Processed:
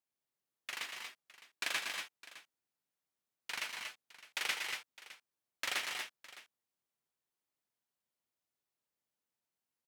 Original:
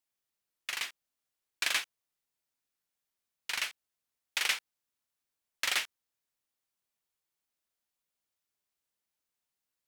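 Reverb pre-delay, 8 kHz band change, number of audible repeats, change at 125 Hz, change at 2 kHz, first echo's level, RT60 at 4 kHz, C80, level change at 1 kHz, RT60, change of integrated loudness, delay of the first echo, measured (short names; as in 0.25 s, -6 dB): none, -6.0 dB, 3, n/a, -4.0 dB, -9.0 dB, none, none, -2.0 dB, none, -6.0 dB, 0.118 s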